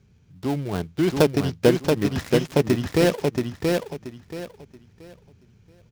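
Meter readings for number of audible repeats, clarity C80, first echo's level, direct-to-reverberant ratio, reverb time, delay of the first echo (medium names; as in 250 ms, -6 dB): 3, no reverb, -3.5 dB, no reverb, no reverb, 679 ms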